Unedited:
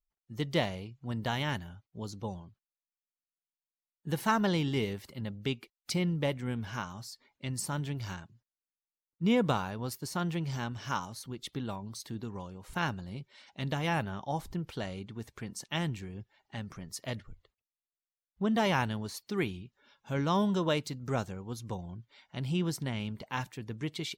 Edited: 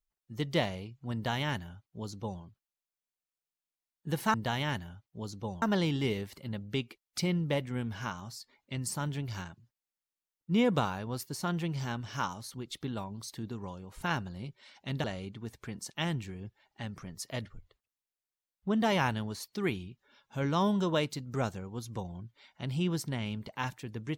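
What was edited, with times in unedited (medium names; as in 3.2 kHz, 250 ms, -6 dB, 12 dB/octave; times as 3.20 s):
1.14–2.42 s: copy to 4.34 s
13.76–14.78 s: delete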